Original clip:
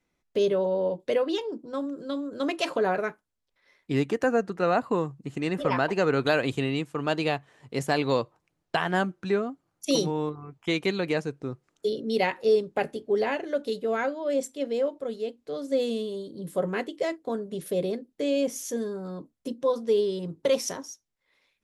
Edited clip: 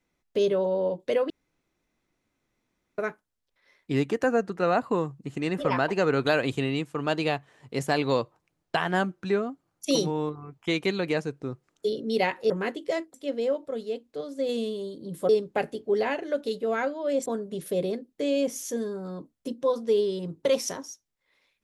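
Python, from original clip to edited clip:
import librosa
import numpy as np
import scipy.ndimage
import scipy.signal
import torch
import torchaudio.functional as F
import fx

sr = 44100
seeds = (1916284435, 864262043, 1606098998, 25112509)

y = fx.edit(x, sr, fx.room_tone_fill(start_s=1.3, length_s=1.68),
    fx.swap(start_s=12.5, length_s=1.97, other_s=16.62, other_length_s=0.64),
    fx.clip_gain(start_s=15.54, length_s=0.28, db=-3.5), tone=tone)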